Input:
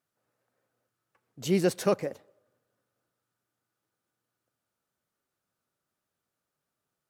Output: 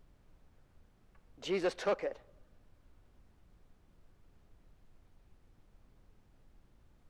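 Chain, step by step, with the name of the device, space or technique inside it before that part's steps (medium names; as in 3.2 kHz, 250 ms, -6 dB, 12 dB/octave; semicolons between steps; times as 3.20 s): aircraft cabin announcement (band-pass 450–3400 Hz; saturation -25 dBFS, distortion -13 dB; brown noise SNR 17 dB)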